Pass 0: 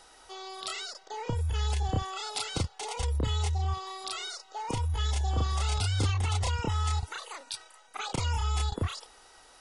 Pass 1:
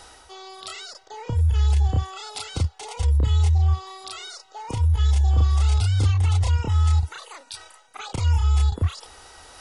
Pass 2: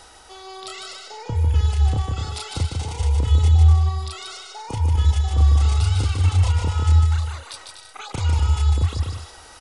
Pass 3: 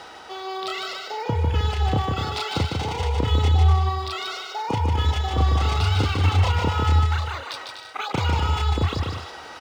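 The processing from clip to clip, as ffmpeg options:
ffmpeg -i in.wav -af "equalizer=frequency=77:width_type=o:width=1.1:gain=11.5,areverse,acompressor=mode=upward:threshold=-36dB:ratio=2.5,areverse" out.wav
ffmpeg -i in.wav -af "aecho=1:1:150|247.5|310.9|352.1|378.8:0.631|0.398|0.251|0.158|0.1" out.wav
ffmpeg -i in.wav -af "highpass=150,lowpass=3600,volume=7.5dB" -ar 44100 -c:a adpcm_ima_wav out.wav

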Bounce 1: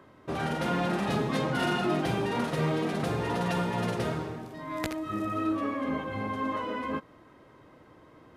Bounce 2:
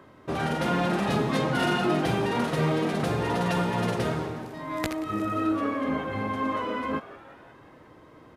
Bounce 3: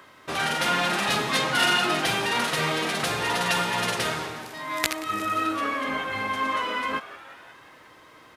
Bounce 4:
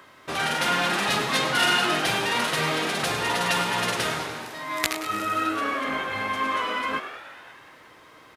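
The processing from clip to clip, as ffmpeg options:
ffmpeg -i in.wav -filter_complex "[0:a]asplit=6[link_01][link_02][link_03][link_04][link_05][link_06];[link_02]adelay=179,afreqshift=140,volume=-18dB[link_07];[link_03]adelay=358,afreqshift=280,volume=-22.4dB[link_08];[link_04]adelay=537,afreqshift=420,volume=-26.9dB[link_09];[link_05]adelay=716,afreqshift=560,volume=-31.3dB[link_10];[link_06]adelay=895,afreqshift=700,volume=-35.7dB[link_11];[link_01][link_07][link_08][link_09][link_10][link_11]amix=inputs=6:normalize=0,volume=3dB" out.wav
ffmpeg -i in.wav -af "tiltshelf=frequency=880:gain=-10,volume=2dB" out.wav
ffmpeg -i in.wav -filter_complex "[0:a]asplit=8[link_01][link_02][link_03][link_04][link_05][link_06][link_07][link_08];[link_02]adelay=102,afreqshift=110,volume=-11.5dB[link_09];[link_03]adelay=204,afreqshift=220,volume=-15.8dB[link_10];[link_04]adelay=306,afreqshift=330,volume=-20.1dB[link_11];[link_05]adelay=408,afreqshift=440,volume=-24.4dB[link_12];[link_06]adelay=510,afreqshift=550,volume=-28.7dB[link_13];[link_07]adelay=612,afreqshift=660,volume=-33dB[link_14];[link_08]adelay=714,afreqshift=770,volume=-37.3dB[link_15];[link_01][link_09][link_10][link_11][link_12][link_13][link_14][link_15]amix=inputs=8:normalize=0" out.wav

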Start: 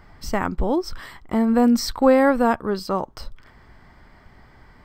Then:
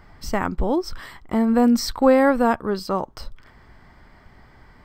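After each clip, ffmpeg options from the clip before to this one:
ffmpeg -i in.wav -af anull out.wav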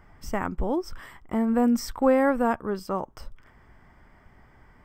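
ffmpeg -i in.wav -af "equalizer=frequency=4200:width_type=o:width=0.38:gain=-14,volume=-5dB" out.wav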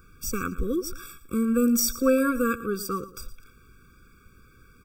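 ffmpeg -i in.wav -af "crystalizer=i=5.5:c=0,aecho=1:1:114|228|342:0.158|0.0444|0.0124,afftfilt=real='re*eq(mod(floor(b*sr/1024/550),2),0)':imag='im*eq(mod(floor(b*sr/1024/550),2),0)':win_size=1024:overlap=0.75" out.wav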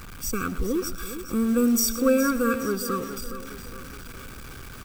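ffmpeg -i in.wav -filter_complex "[0:a]aeval=exprs='val(0)+0.5*0.015*sgn(val(0))':channel_layout=same,acrusher=bits=7:mode=log:mix=0:aa=0.000001,asplit=2[link_01][link_02];[link_02]aecho=0:1:415|830|1245|1660|2075:0.266|0.128|0.0613|0.0294|0.0141[link_03];[link_01][link_03]amix=inputs=2:normalize=0" out.wav

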